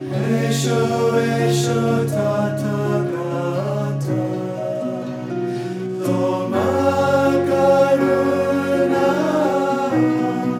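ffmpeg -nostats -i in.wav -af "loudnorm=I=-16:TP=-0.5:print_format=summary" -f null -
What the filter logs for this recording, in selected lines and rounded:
Input Integrated:    -18.6 LUFS
Input True Peak:      -3.8 dBTP
Input LRA:             4.8 LU
Input Threshold:     -28.6 LUFS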